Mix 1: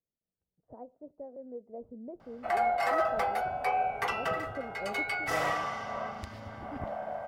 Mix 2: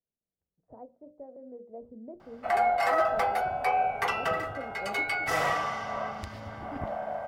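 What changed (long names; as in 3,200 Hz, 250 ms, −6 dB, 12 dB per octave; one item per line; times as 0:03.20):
background +3.0 dB
master: add mains-hum notches 60/120/180/240/300/360/420/480/540/600 Hz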